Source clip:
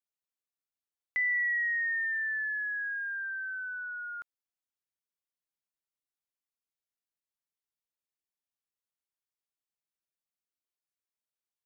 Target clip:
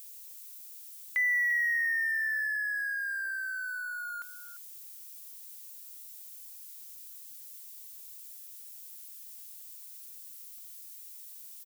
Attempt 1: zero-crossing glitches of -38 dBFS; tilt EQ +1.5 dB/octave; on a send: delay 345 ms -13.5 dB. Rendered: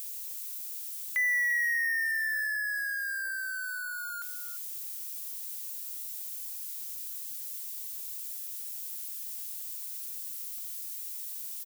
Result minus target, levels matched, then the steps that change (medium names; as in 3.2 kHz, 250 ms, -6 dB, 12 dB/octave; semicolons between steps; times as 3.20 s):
zero-crossing glitches: distortion +8 dB
change: zero-crossing glitches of -46.5 dBFS